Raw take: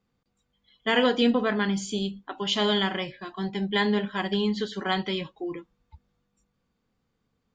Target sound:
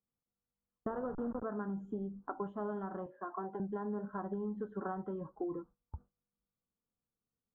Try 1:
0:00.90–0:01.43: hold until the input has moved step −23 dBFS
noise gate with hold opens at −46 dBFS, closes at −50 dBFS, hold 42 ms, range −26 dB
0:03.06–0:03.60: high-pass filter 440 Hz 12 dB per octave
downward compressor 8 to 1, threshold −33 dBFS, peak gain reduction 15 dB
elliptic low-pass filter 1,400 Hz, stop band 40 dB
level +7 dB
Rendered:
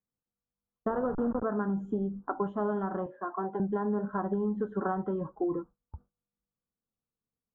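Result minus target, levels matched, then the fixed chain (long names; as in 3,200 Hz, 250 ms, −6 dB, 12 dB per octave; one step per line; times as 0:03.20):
downward compressor: peak gain reduction −8.5 dB
0:00.90–0:01.43: hold until the input has moved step −23 dBFS
noise gate with hold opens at −46 dBFS, closes at −50 dBFS, hold 42 ms, range −26 dB
0:03.06–0:03.60: high-pass filter 440 Hz 12 dB per octave
downward compressor 8 to 1, threshold −42.5 dBFS, peak gain reduction 23.5 dB
elliptic low-pass filter 1,400 Hz, stop band 40 dB
level +7 dB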